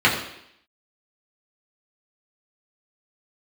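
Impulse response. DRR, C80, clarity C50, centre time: -6.0 dB, 8.5 dB, 6.5 dB, 31 ms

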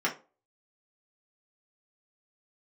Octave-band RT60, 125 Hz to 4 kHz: 0.30 s, 0.35 s, 0.35 s, 0.30 s, 0.25 s, 0.20 s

